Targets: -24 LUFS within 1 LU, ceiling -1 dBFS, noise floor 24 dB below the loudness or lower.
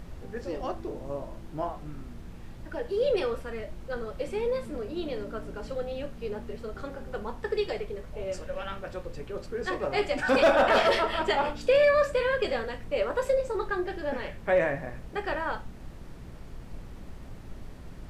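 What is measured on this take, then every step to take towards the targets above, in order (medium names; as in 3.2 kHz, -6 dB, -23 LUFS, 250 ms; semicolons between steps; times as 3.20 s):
hum 60 Hz; highest harmonic 180 Hz; hum level -48 dBFS; noise floor -44 dBFS; noise floor target -54 dBFS; loudness -29.5 LUFS; peak level -13.0 dBFS; loudness target -24.0 LUFS
-> de-hum 60 Hz, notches 3; noise print and reduce 10 dB; trim +5.5 dB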